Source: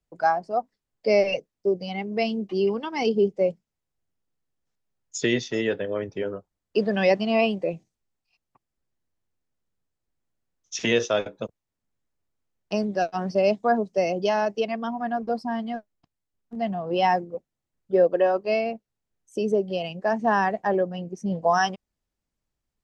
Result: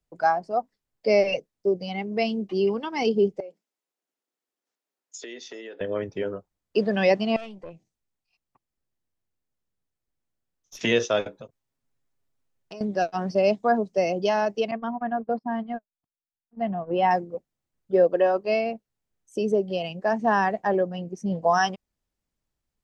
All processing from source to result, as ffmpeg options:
-filter_complex "[0:a]asettb=1/sr,asplit=3[a][b][c];[a]atrim=end=3.404[d];[b]atrim=start=3.4:end=5.81,asetpts=PTS-STARTPTS,afade=t=in:d=0.004:c=qsin,afade=t=out:st=2.406:d=0.004:c=qsin,highpass=f=280:w=0.5412,highpass=f=280:w=1.3066,acompressor=threshold=-37dB:ratio=6:attack=3.2:release=140:knee=1:detection=peak[e];[c]atrim=start=5.806[f];[d][e]acrossfade=d=0.004:c1=hsin:c2=qsin[g];[g][f]acrossfade=d=0.004:c1=qsin:c2=hsin,asettb=1/sr,asplit=3[h][i][j];[h]atrim=end=7.364[k];[i]atrim=start=7.36:end=10.81,asetpts=PTS-STARTPTS,afade=t=in:d=0.004:c=qsin,afade=t=out:st=3.446:d=0.004:c=qsin,acompressor=threshold=-52dB:ratio=1.5:attack=3.2:release=140:knee=1:detection=peak,aeval=exprs='(tanh(35.5*val(0)+0.6)-tanh(0.6))/35.5':c=same[l];[j]atrim=start=10.806[m];[k][l]acrossfade=d=0.004:c1=hsin:c2=qsin[n];[n][m]acrossfade=d=0.004:c1=qsin:c2=hsin,asettb=1/sr,asplit=3[o][p][q];[o]atrim=end=11.404[r];[p]atrim=start=11.4:end=12.81,asetpts=PTS-STARTPTS,afade=t=in:d=0.004:c=qsin,afade=t=out:st=1.406:d=0.004:c=qsin,aecho=1:1:7.5:0.56,atrim=end_sample=62181,acompressor=threshold=-39dB:ratio=4:attack=3.2:release=140:knee=1:detection=peak[s];[q]atrim=start=12.806[t];[r][s]acrossfade=d=0.004:c1=hsin:c2=qsin[u];[u][t]acrossfade=d=0.004:c1=qsin:c2=hsin,asettb=1/sr,asplit=3[v][w][x];[v]atrim=end=14.714[y];[w]atrim=start=14.71:end=17.11,asetpts=PTS-STARTPTS,afade=t=in:d=0.004:c=qsin,afade=t=out:st=2.396:d=0.004:c=qsin,agate=range=-22dB:threshold=-32dB:ratio=16:release=100:detection=peak,lowpass=2.2k[z];[x]atrim=start=17.106[aa];[y][z]acrossfade=d=0.004:c1=hsin:c2=qsin[ab];[ab][aa]acrossfade=d=0.004:c1=qsin:c2=hsin"

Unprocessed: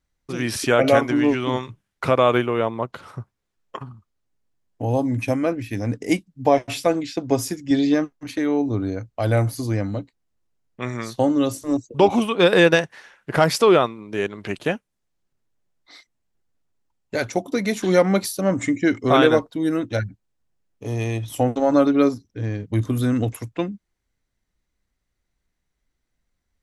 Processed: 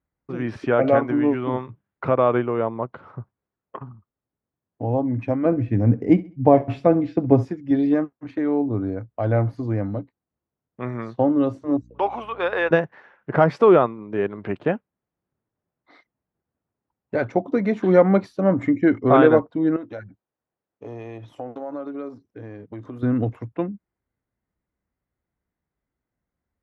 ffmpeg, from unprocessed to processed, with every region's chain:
-filter_complex "[0:a]asettb=1/sr,asplit=3[a][b][c];[a]atrim=end=5.454[d];[b]atrim=start=5.45:end=7.45,asetpts=PTS-STARTPTS,afade=t=in:d=0.004:c=qsin,afade=t=out:st=1.996:d=0.004:c=qsin,lowshelf=f=310:g=11.5,aecho=1:1:66|132|198:0.112|0.0359|0.0115,atrim=end_sample=88200[e];[c]atrim=start=7.446[f];[d][e]acrossfade=d=0.004:c1=hsin:c2=qsin[g];[g][f]acrossfade=d=0.004:c1=qsin:c2=hsin,asettb=1/sr,asplit=3[h][i][j];[h]atrim=end=11.814[k];[i]atrim=start=11.81:end=12.71,asetpts=PTS-STARTPTS,afade=t=in:d=0.004:c=qsin,afade=t=out:st=0.896:d=0.004:c=qsin,highpass=800,aeval=exprs='val(0)+0.00447*(sin(2*PI*60*n/s)+sin(2*PI*2*60*n/s)/2+sin(2*PI*3*60*n/s)/3+sin(2*PI*4*60*n/s)/4+sin(2*PI*5*60*n/s)/5)':c=same[l];[j]atrim=start=12.706[m];[k][l]acrossfade=d=0.004:c1=hsin:c2=qsin[n];[n][m]acrossfade=d=0.004:c1=qsin:c2=hsin,asettb=1/sr,asplit=3[o][p][q];[o]atrim=end=19.764[r];[p]atrim=start=19.76:end=23.03,asetpts=PTS-STARTPTS,afade=t=in:d=0.004:c=qsin,afade=t=out:st=3.266:d=0.004:c=qsin,bass=f=250:g=-11,treble=f=4k:g=6,acompressor=threshold=-33dB:ratio=3:attack=3.2:release=140:knee=1:detection=peak[s];[q]atrim=start=23.026[t];[r][s]acrossfade=d=0.004:c1=hsin:c2=qsin[u];[u][t]acrossfade=d=0.004:c1=qsin:c2=hsin,lowpass=1.4k,dynaudnorm=f=860:g=13:m=11.5dB,highpass=73,volume=-1dB"

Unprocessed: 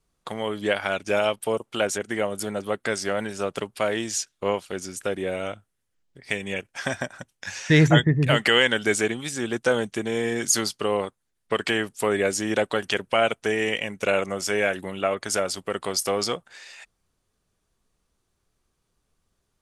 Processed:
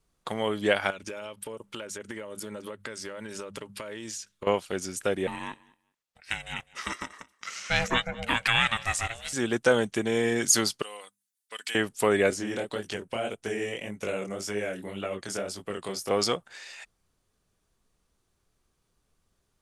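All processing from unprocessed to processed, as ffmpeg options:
-filter_complex "[0:a]asettb=1/sr,asplit=3[a][b][c];[a]atrim=end=0.904[d];[b]atrim=start=0.9:end=4.47,asetpts=PTS-STARTPTS,afade=t=in:d=0.004:c=qsin,afade=t=out:st=3.566:d=0.004:c=qsin,bandreject=f=50:t=h:w=6,bandreject=f=100:t=h:w=6,bandreject=f=150:t=h:w=6,bandreject=f=200:t=h:w=6,acompressor=threshold=-33dB:ratio=16:attack=3.2:release=140:knee=1:detection=peak,asuperstop=centerf=720:order=4:qfactor=4.5[e];[c]atrim=start=4.466[f];[d][e]acrossfade=d=0.004:c1=hsin:c2=qsin[g];[g][f]acrossfade=d=0.004:c1=qsin:c2=hsin,asettb=1/sr,asplit=3[h][i][j];[h]atrim=end=5.274[k];[i]atrim=start=5.27:end=9.33,asetpts=PTS-STARTPTS,afade=t=in:d=0.004:c=qsin,afade=t=out:st=4.056:d=0.004:c=qsin,highpass=f=880:p=1,aecho=1:1:202|404:0.0794|0.0119,atrim=end_sample=179046,aeval=exprs='val(0)*sin(2*PI*340*n/s)':c=same[l];[j]atrim=start=9.326[m];[k][l]acrossfade=d=0.004:c1=hsin:c2=qsin[n];[n][m]acrossfade=d=0.004:c1=qsin:c2=hsin,asettb=1/sr,asplit=3[o][p][q];[o]atrim=end=10.824[r];[p]atrim=start=10.82:end=11.75,asetpts=PTS-STARTPTS,afade=t=in:d=0.004:c=qsin,afade=t=out:st=0.926:d=0.004:c=qsin,aderivative,bandreject=f=50:t=h:w=6,bandreject=f=100:t=h:w=6,bandreject=f=150:t=h:w=6,bandreject=f=200:t=h:w=6,bandreject=f=250:t=h:w=6,aecho=1:1:4:0.4,atrim=end_sample=41013[s];[q]atrim=start=11.746[t];[r][s]acrossfade=d=0.004:c1=hsin:c2=qsin[u];[u][t]acrossfade=d=0.004:c1=qsin:c2=hsin,asettb=1/sr,asplit=3[v][w][x];[v]atrim=end=12.304[y];[w]atrim=start=12.3:end=16.11,asetpts=PTS-STARTPTS,afade=t=in:d=0.004:c=qsin,afade=t=out:st=3.806:d=0.004:c=qsin,acrossover=split=540|2000|5800[z][aa][ab][ac];[z]acompressor=threshold=-27dB:ratio=3[ad];[aa]acompressor=threshold=-39dB:ratio=3[ae];[ab]acompressor=threshold=-40dB:ratio=3[af];[ac]acompressor=threshold=-37dB:ratio=3[ag];[ad][ae][af][ag]amix=inputs=4:normalize=0,flanger=delay=18.5:depth=7.5:speed=1.8[ah];[x]atrim=start=16.106[ai];[y][ah]acrossfade=d=0.004:c1=hsin:c2=qsin[aj];[aj][ai]acrossfade=d=0.004:c1=qsin:c2=hsin"

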